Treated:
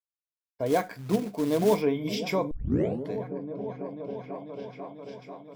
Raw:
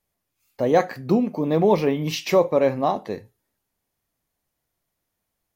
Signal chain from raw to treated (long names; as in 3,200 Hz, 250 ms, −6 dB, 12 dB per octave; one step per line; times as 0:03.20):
EQ curve with evenly spaced ripples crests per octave 1.7, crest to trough 11 dB
downward expander −33 dBFS
echo whose low-pass opens from repeat to repeat 492 ms, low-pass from 200 Hz, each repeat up 1 octave, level −6 dB
0:00.66–0:01.82: floating-point word with a short mantissa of 2 bits
0:02.51: tape start 0.58 s
level −7.5 dB